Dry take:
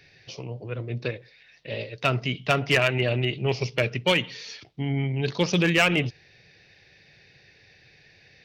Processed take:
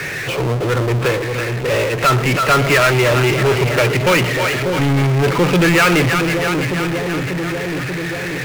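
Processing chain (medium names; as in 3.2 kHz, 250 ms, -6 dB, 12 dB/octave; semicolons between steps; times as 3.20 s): cabinet simulation 140–2300 Hz, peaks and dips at 220 Hz -8 dB, 700 Hz -5 dB, 1.3 kHz +8 dB; two-band feedback delay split 570 Hz, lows 589 ms, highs 328 ms, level -13 dB; power-law waveshaper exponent 0.35; trim +2.5 dB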